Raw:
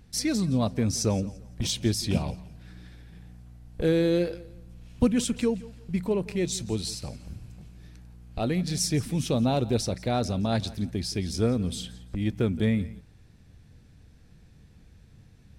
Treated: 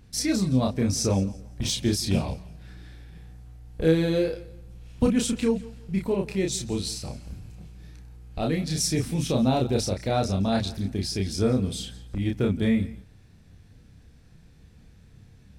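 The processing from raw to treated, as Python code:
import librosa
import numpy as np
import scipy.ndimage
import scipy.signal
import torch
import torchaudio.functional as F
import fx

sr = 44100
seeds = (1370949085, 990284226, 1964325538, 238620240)

y = fx.doubler(x, sr, ms=31.0, db=-3)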